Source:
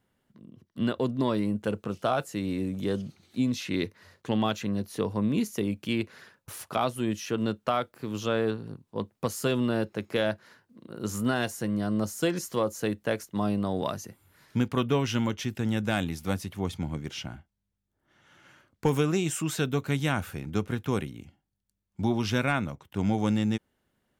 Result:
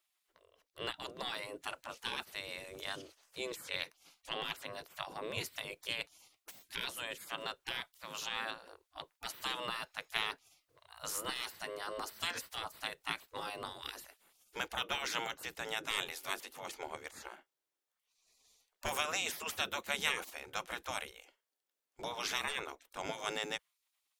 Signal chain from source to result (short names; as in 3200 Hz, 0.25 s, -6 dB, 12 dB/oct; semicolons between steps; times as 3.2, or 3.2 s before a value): dynamic EQ 140 Hz, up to +4 dB, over -43 dBFS, Q 1.2; spectral gate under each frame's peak -20 dB weak; gain +2 dB